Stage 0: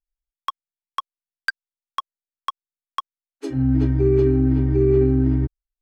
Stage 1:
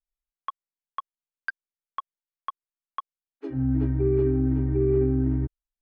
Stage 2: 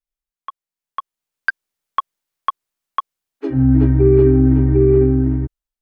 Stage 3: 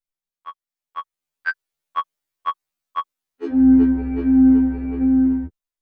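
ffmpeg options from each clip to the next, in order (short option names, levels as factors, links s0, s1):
-af "lowpass=2000,volume=0.531"
-af "dynaudnorm=f=340:g=7:m=5.62"
-af "afftfilt=real='re*2*eq(mod(b,4),0)':imag='im*2*eq(mod(b,4),0)':win_size=2048:overlap=0.75"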